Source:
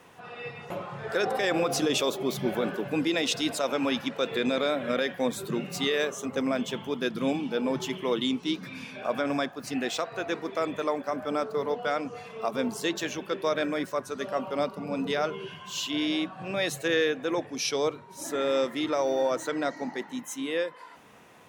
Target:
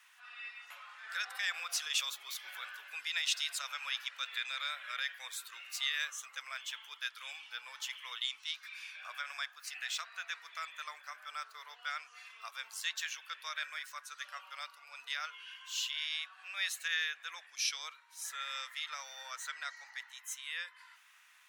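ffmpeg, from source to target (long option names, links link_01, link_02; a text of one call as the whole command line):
ffmpeg -i in.wav -af "highpass=frequency=1400:width=0.5412,highpass=frequency=1400:width=1.3066,volume=-3.5dB" out.wav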